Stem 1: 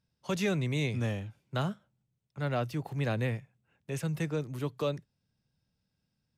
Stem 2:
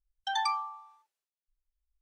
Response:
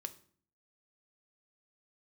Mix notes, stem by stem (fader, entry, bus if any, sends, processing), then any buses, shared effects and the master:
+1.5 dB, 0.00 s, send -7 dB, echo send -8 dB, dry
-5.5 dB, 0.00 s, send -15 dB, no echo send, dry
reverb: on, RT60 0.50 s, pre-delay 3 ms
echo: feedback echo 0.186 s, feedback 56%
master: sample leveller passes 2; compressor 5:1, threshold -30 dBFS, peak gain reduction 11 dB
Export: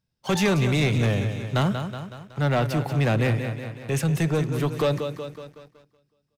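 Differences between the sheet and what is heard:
stem 2 -5.5 dB -> -12.5 dB; master: missing compressor 5:1, threshold -30 dBFS, peak gain reduction 11 dB

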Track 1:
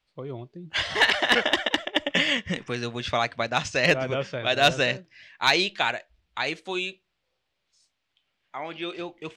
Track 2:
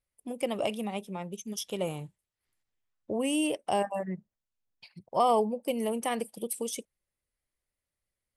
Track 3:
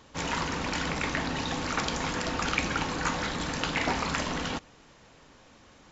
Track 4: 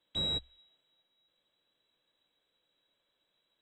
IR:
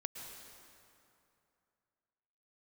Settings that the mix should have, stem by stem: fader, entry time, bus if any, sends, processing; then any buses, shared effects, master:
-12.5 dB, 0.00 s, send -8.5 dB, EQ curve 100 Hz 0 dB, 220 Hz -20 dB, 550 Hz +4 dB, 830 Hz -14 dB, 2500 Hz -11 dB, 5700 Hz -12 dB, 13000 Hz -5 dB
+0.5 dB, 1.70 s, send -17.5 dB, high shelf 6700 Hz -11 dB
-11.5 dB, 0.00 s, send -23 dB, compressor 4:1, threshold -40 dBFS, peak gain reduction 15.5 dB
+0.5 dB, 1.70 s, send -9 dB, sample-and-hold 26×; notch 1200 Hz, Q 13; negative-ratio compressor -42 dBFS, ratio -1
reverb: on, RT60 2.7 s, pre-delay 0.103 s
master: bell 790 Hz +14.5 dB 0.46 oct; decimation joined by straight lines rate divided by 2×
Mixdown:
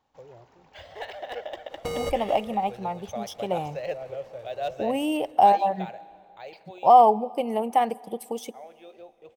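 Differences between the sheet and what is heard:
stem 3 -11.5 dB -> -23.0 dB; stem 4 +0.5 dB -> +9.5 dB

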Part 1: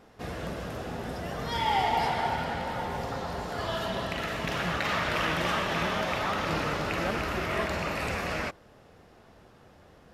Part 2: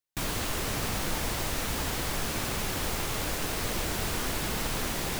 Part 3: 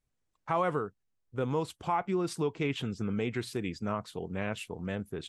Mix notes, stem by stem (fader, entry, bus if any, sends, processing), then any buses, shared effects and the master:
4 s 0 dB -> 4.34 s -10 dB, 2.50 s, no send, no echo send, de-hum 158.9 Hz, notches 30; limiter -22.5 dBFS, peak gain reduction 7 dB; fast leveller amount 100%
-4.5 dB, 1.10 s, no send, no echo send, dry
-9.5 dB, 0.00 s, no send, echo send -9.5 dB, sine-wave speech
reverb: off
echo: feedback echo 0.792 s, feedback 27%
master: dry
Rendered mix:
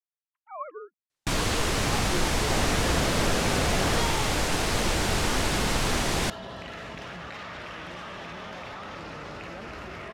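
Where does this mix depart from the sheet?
stem 2 -4.5 dB -> +6.0 dB; master: extra LPF 8400 Hz 12 dB/oct

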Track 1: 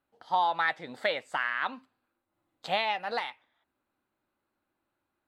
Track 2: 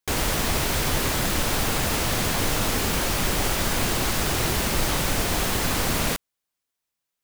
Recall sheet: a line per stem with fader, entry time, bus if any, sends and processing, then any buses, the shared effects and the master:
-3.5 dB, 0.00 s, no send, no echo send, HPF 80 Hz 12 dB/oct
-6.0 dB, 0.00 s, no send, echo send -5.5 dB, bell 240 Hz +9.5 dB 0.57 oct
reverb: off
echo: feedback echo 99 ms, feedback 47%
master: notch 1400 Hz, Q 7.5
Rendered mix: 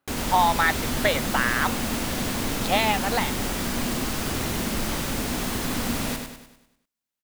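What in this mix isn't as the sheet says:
stem 1 -3.5 dB -> +6.0 dB; master: missing notch 1400 Hz, Q 7.5

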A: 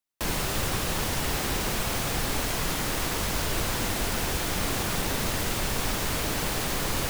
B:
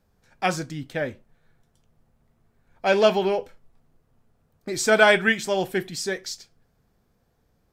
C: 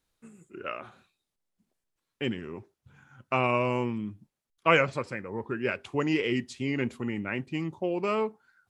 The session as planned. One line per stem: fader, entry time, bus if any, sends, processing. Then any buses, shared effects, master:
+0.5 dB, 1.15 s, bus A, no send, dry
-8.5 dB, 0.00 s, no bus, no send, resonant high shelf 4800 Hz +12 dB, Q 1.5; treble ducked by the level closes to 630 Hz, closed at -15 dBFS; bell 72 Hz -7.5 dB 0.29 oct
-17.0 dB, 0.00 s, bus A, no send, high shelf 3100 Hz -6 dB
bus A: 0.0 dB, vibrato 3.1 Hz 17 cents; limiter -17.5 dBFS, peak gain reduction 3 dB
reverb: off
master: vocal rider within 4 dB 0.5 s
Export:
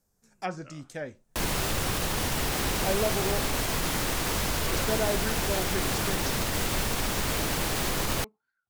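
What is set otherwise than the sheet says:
stem C: missing high shelf 3100 Hz -6 dB; master: missing vocal rider within 4 dB 0.5 s

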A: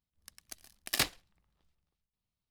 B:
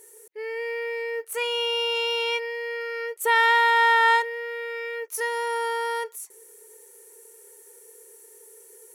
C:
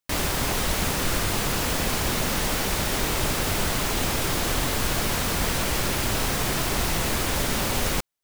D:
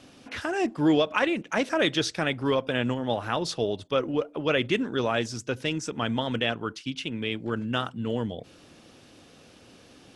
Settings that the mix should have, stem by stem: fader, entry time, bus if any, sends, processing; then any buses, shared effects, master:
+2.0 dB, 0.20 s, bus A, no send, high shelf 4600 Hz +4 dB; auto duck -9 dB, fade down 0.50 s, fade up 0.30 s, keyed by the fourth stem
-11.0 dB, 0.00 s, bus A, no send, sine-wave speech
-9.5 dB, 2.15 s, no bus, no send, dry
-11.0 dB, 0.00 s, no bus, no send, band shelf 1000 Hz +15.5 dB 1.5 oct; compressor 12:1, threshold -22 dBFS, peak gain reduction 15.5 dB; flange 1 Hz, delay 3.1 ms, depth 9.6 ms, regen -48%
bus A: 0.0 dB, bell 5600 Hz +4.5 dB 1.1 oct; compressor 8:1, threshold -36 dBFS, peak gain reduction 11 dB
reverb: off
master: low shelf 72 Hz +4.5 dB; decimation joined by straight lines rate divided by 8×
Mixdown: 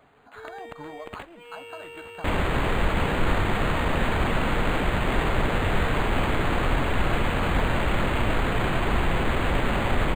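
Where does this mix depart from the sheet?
stem A +2.0 dB -> +14.0 dB; stem B: missing sine-wave speech; stem C -9.5 dB -> +1.0 dB

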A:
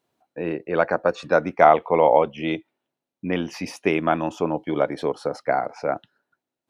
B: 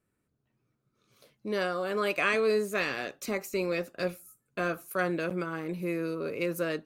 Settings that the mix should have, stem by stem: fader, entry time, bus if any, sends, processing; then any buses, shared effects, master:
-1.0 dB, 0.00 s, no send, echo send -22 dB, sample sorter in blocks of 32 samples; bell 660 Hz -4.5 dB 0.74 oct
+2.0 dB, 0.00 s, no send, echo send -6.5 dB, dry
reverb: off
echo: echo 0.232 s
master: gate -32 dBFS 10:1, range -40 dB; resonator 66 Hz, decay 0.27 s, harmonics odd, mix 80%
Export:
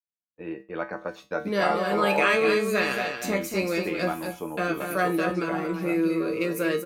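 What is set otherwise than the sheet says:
stem A: missing sample sorter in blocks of 32 samples; stem B +2.0 dB -> +12.5 dB

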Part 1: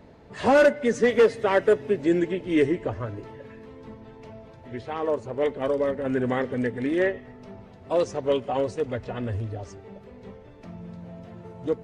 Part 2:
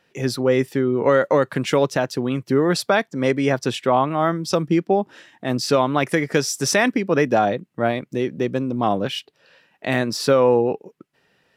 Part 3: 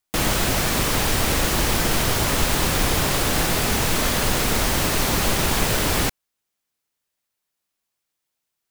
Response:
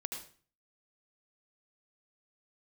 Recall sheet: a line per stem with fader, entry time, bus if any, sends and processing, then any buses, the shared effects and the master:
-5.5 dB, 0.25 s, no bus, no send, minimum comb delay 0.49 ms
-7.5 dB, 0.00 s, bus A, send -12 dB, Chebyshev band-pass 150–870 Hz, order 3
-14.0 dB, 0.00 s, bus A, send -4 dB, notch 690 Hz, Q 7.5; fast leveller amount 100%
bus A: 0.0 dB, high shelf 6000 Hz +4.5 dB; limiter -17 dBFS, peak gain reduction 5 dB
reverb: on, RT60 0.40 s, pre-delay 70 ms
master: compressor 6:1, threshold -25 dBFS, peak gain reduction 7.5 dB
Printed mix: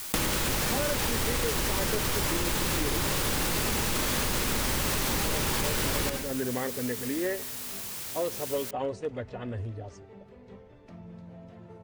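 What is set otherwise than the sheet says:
stem 1: missing minimum comb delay 0.49 ms; stem 2: muted; stem 3 -14.0 dB -> -3.0 dB

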